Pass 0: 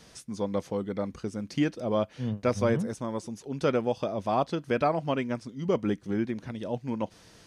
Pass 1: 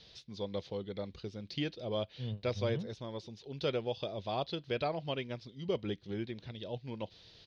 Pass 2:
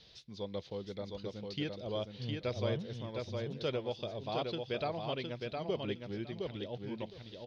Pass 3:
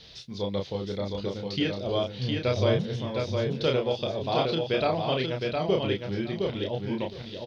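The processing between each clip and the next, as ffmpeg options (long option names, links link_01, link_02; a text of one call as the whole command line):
ffmpeg -i in.wav -af "firequalizer=gain_entry='entry(110,0);entry(250,-10);entry(380,-2);entry(1200,-9);entry(3800,11);entry(8200,-26)':delay=0.05:min_phase=1,volume=-4.5dB" out.wav
ffmpeg -i in.wav -af "aecho=1:1:712|1424|2136:0.631|0.107|0.0182,volume=-2dB" out.wav
ffmpeg -i in.wav -filter_complex "[0:a]asplit=2[link_01][link_02];[link_02]adelay=31,volume=-3.5dB[link_03];[link_01][link_03]amix=inputs=2:normalize=0,volume=9dB" out.wav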